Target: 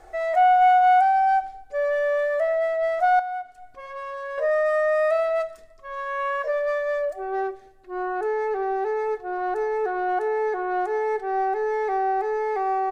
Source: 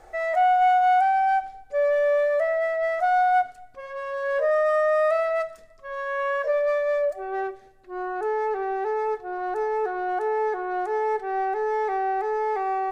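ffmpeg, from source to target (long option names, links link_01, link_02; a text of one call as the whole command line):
ffmpeg -i in.wav -filter_complex "[0:a]aecho=1:1:2.8:0.34,asettb=1/sr,asplit=3[link_01][link_02][link_03];[link_01]atrim=end=3.194[link_04];[link_02]atrim=start=3.19:end=4.38,asetpts=PTS-STARTPTS,afade=type=in:duration=0.004:curve=qsin,afade=type=out:start_time=1.186:duration=0.004:curve=qsin,acompressor=threshold=-29dB:ratio=6[link_05];[link_03]atrim=start=4.376[link_06];[link_04][link_05]acrossfade=duration=0.004:curve1=hsin:curve2=qsin[link_07];[link_07][link_06]acrossfade=duration=0.004:curve1=qsin:curve2=hsin" out.wav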